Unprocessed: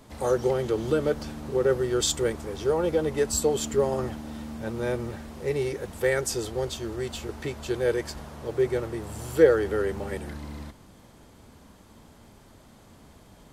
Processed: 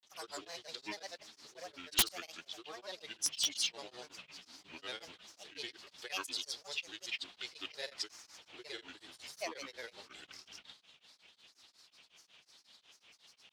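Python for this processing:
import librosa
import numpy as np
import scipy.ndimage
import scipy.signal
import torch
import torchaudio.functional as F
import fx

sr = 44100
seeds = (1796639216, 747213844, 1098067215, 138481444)

p1 = fx.rider(x, sr, range_db=5, speed_s=2.0)
p2 = x + (p1 * librosa.db_to_amplitude(-1.5))
p3 = fx.bandpass_q(p2, sr, hz=4000.0, q=3.5)
p4 = fx.granulator(p3, sr, seeds[0], grain_ms=100.0, per_s=20.0, spray_ms=100.0, spread_st=7)
p5 = (np.mod(10.0 ** (22.0 / 20.0) * p4 + 1.0, 2.0) - 1.0) / 10.0 ** (22.0 / 20.0)
p6 = p5 * np.abs(np.cos(np.pi * 5.5 * np.arange(len(p5)) / sr))
y = p6 * librosa.db_to_amplitude(3.0)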